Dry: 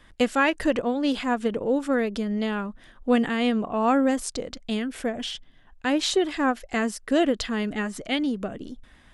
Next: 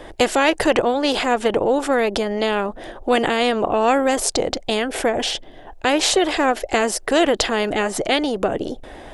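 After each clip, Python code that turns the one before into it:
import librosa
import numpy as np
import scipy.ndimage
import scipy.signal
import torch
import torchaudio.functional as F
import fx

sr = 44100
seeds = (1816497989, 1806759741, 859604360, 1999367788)

y = fx.band_shelf(x, sr, hz=520.0, db=14.5, octaves=1.7)
y = fx.spectral_comp(y, sr, ratio=2.0)
y = y * librosa.db_to_amplitude(-3.0)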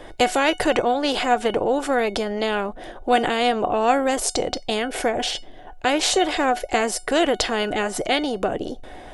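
y = fx.comb_fb(x, sr, f0_hz=740.0, decay_s=0.21, harmonics='all', damping=0.0, mix_pct=70)
y = y * librosa.db_to_amplitude(7.0)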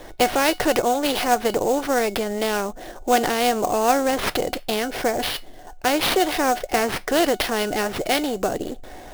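y = fx.sample_hold(x, sr, seeds[0], rate_hz=7400.0, jitter_pct=20)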